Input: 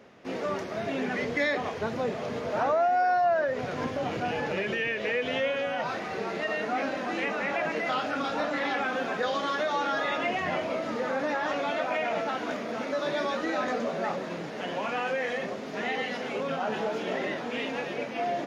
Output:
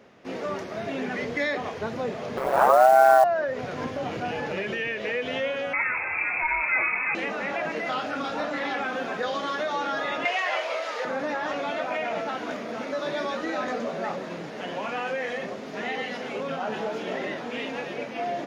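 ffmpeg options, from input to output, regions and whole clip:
-filter_complex "[0:a]asettb=1/sr,asplit=3[a][b][c];[a]atrim=end=2.374[d];[b]atrim=start=2.37:end=3.24,asetpts=PTS-STARTPTS,afade=t=in:d=0.004:c=qsin,afade=t=out:st=0.866:d=0.004:c=qsin,equalizer=f=1k:w=0.51:g=13,aeval=exprs='val(0)*sin(2*PI*66*n/s)':c=same,acrusher=bits=6:mode=log:mix=0:aa=0.000001[e];[c]atrim=start=3.236[f];[d][e]acrossfade=d=0.004:c1=hsin:c2=qsin[g];[g][f]acrossfade=d=0.004:c1=qsin:c2=hsin,asettb=1/sr,asplit=3[h][i][j];[h]atrim=end=5.734[k];[i]atrim=start=5.73:end=7.15,asetpts=PTS-STARTPTS,afade=t=in:d=0.004:c=qsin,afade=t=out:st=1.416:d=0.004:c=qsin,acontrast=26,lowpass=f=2.4k:t=q:w=0.5098,lowpass=f=2.4k:t=q:w=0.6013,lowpass=f=2.4k:t=q:w=0.9,lowpass=f=2.4k:t=q:w=2.563,afreqshift=-2800[l];[j]atrim=start=7.146[m];[k][l]acrossfade=d=0.004:c1=hsin:c2=qsin[n];[n][m]acrossfade=d=0.004:c1=qsin:c2=hsin,asettb=1/sr,asplit=3[o][p][q];[o]atrim=end=10.254[r];[p]atrim=start=10.25:end=11.05,asetpts=PTS-STARTPTS,afade=t=in:d=0.004:c=qsin,afade=t=out:st=0.796:d=0.004:c=qsin,highpass=f=470:w=0.5412,highpass=f=470:w=1.3066,equalizer=f=3.7k:w=0.32:g=7[s];[q]atrim=start=11.046[t];[r][s]acrossfade=d=0.004:c1=hsin:c2=qsin[u];[u][t]acrossfade=d=0.004:c1=qsin:c2=hsin"

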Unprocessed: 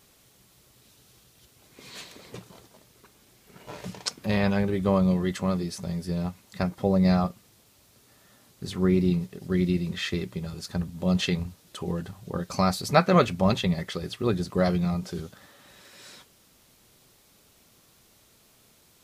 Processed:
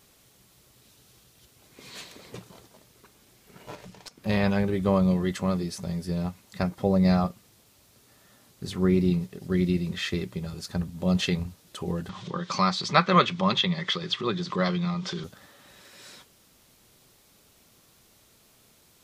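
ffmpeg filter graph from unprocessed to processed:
-filter_complex "[0:a]asettb=1/sr,asplit=3[a][b][c];[a]atrim=end=3.754[d];[b]atrim=start=3.75:end=4.26,asetpts=PTS-STARTPTS,afade=t=in:d=0.004:c=qsin,afade=t=out:st=0.506:d=0.004:c=qsin,acompressor=threshold=-40dB:ratio=2.5:attack=3.2:release=140:knee=1:detection=peak,aeval=exprs='(tanh(17.8*val(0)+0.7)-tanh(0.7))/17.8':c=same[e];[c]atrim=start=4.256[f];[d][e]acrossfade=d=0.004:c1=hsin:c2=qsin[g];[g][f]acrossfade=d=0.004:c1=qsin:c2=hsin,asettb=1/sr,asplit=3[h][i][j];[h]atrim=end=12.094[k];[i]atrim=start=12.09:end=15.24,asetpts=PTS-STARTPTS,afade=t=in:d=0.004:c=qsin,afade=t=out:st=3.146:d=0.004:c=qsin,acompressor=mode=upward:threshold=-23dB:ratio=2.5:attack=3.2:release=140:knee=2.83:detection=peak,highpass=f=150:w=0.5412,highpass=f=150:w=1.3066,equalizer=f=260:t=q:w=4:g=-9,equalizer=f=450:t=q:w=4:g=-4,equalizer=f=680:t=q:w=4:g=-8,equalizer=f=1.1k:t=q:w=4:g=7,equalizer=f=2k:t=q:w=4:g=4,equalizer=f=3.4k:t=q:w=4:g=9,lowpass=f=6.2k:w=0.5412,lowpass=f=6.2k:w=1.3066[l];[j]atrim=start=15.236[m];[k][l]acrossfade=d=0.004:c1=hsin:c2=qsin[n];[n][m]acrossfade=d=0.004:c1=qsin:c2=hsin"

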